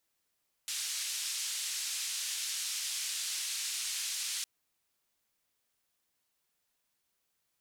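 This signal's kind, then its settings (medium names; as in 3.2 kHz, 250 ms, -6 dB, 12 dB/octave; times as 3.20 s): noise band 2.9–8.3 kHz, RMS -36.5 dBFS 3.76 s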